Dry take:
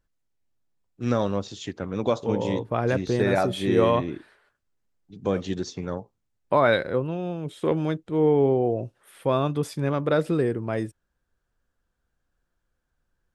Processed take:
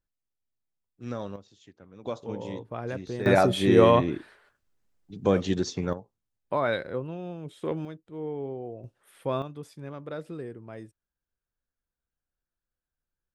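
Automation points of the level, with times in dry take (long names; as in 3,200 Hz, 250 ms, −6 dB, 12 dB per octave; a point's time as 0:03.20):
−11 dB
from 0:01.36 −20 dB
from 0:02.05 −10 dB
from 0:03.26 +2.5 dB
from 0:05.93 −7 dB
from 0:07.85 −14.5 dB
from 0:08.84 −6 dB
from 0:09.42 −14.5 dB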